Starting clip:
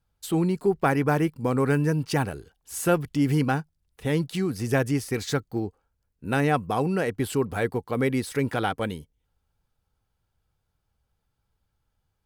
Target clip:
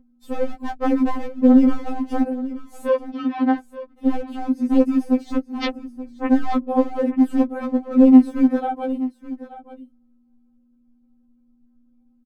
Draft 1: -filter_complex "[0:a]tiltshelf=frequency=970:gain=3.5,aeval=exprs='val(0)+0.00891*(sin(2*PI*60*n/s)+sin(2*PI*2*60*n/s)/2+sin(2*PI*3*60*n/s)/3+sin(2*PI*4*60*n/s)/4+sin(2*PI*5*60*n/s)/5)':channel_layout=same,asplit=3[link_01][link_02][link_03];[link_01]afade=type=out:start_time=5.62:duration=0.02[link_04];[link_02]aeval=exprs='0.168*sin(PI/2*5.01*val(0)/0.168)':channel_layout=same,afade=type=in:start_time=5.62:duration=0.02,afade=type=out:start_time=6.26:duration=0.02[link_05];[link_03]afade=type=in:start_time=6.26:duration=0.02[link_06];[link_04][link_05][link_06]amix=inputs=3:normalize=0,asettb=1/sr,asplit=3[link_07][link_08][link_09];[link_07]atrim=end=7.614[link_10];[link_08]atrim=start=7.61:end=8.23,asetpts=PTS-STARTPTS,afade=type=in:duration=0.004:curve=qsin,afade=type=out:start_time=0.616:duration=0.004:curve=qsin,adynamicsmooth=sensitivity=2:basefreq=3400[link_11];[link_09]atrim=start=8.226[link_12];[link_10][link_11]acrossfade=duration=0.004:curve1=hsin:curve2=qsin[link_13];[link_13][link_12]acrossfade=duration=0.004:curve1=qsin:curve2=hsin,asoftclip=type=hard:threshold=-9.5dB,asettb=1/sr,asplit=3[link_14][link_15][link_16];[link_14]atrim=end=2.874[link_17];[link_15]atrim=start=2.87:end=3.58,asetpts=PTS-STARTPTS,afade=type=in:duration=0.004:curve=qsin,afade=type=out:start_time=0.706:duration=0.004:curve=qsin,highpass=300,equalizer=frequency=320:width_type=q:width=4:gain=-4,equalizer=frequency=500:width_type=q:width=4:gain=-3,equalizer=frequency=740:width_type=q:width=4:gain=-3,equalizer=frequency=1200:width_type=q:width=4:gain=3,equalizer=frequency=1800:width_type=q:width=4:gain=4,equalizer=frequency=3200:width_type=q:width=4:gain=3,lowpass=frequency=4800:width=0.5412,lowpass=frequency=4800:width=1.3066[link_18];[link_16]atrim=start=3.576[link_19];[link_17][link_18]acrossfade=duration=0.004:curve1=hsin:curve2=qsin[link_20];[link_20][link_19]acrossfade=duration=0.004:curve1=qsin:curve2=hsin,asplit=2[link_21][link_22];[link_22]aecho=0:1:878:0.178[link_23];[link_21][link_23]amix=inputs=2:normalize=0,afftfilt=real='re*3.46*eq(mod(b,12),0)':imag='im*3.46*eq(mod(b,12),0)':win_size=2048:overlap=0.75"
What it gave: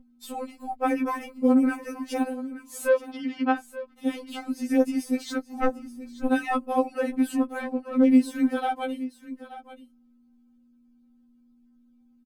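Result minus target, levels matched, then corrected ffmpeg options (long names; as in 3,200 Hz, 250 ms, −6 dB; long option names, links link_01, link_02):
1,000 Hz band +4.5 dB
-filter_complex "[0:a]tiltshelf=frequency=970:gain=15,aeval=exprs='val(0)+0.00891*(sin(2*PI*60*n/s)+sin(2*PI*2*60*n/s)/2+sin(2*PI*3*60*n/s)/3+sin(2*PI*4*60*n/s)/4+sin(2*PI*5*60*n/s)/5)':channel_layout=same,asplit=3[link_01][link_02][link_03];[link_01]afade=type=out:start_time=5.62:duration=0.02[link_04];[link_02]aeval=exprs='0.168*sin(PI/2*5.01*val(0)/0.168)':channel_layout=same,afade=type=in:start_time=5.62:duration=0.02,afade=type=out:start_time=6.26:duration=0.02[link_05];[link_03]afade=type=in:start_time=6.26:duration=0.02[link_06];[link_04][link_05][link_06]amix=inputs=3:normalize=0,asettb=1/sr,asplit=3[link_07][link_08][link_09];[link_07]atrim=end=7.614[link_10];[link_08]atrim=start=7.61:end=8.23,asetpts=PTS-STARTPTS,afade=type=in:duration=0.004:curve=qsin,afade=type=out:start_time=0.616:duration=0.004:curve=qsin,adynamicsmooth=sensitivity=2:basefreq=3400[link_11];[link_09]atrim=start=8.226[link_12];[link_10][link_11]acrossfade=duration=0.004:curve1=hsin:curve2=qsin[link_13];[link_13][link_12]acrossfade=duration=0.004:curve1=qsin:curve2=hsin,asoftclip=type=hard:threshold=-9.5dB,asettb=1/sr,asplit=3[link_14][link_15][link_16];[link_14]atrim=end=2.874[link_17];[link_15]atrim=start=2.87:end=3.58,asetpts=PTS-STARTPTS,afade=type=in:duration=0.004:curve=qsin,afade=type=out:start_time=0.706:duration=0.004:curve=qsin,highpass=300,equalizer=frequency=320:width_type=q:width=4:gain=-4,equalizer=frequency=500:width_type=q:width=4:gain=-3,equalizer=frequency=740:width_type=q:width=4:gain=-3,equalizer=frequency=1200:width_type=q:width=4:gain=3,equalizer=frequency=1800:width_type=q:width=4:gain=4,equalizer=frequency=3200:width_type=q:width=4:gain=3,lowpass=frequency=4800:width=0.5412,lowpass=frequency=4800:width=1.3066[link_18];[link_16]atrim=start=3.576[link_19];[link_17][link_18]acrossfade=duration=0.004:curve1=hsin:curve2=qsin[link_20];[link_20][link_19]acrossfade=duration=0.004:curve1=qsin:curve2=hsin,asplit=2[link_21][link_22];[link_22]aecho=0:1:878:0.178[link_23];[link_21][link_23]amix=inputs=2:normalize=0,afftfilt=real='re*3.46*eq(mod(b,12),0)':imag='im*3.46*eq(mod(b,12),0)':win_size=2048:overlap=0.75"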